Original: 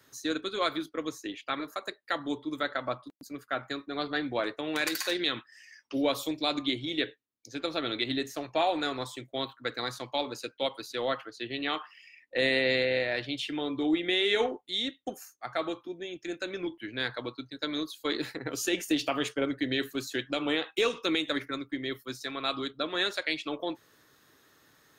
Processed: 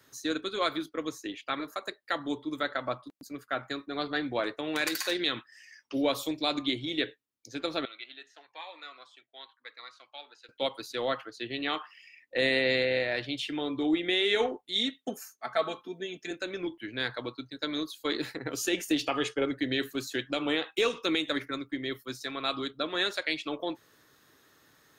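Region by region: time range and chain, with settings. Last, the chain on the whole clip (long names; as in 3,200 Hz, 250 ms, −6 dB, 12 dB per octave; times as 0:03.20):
0:07.85–0:10.49: high-pass filter 1,400 Hz + head-to-tape spacing loss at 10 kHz 30 dB + phaser whose notches keep moving one way rising 1 Hz
0:14.75–0:16.31: high-pass filter 86 Hz + comb filter 4.6 ms, depth 84%
0:19.05–0:19.52: low-pass filter 8,500 Hz + comb filter 2.4 ms, depth 39%
whole clip: no processing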